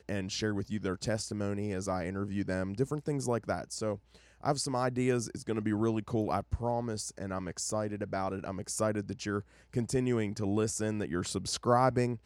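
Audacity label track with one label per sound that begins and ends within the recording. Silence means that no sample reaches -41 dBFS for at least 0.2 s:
4.440000	9.410000	sound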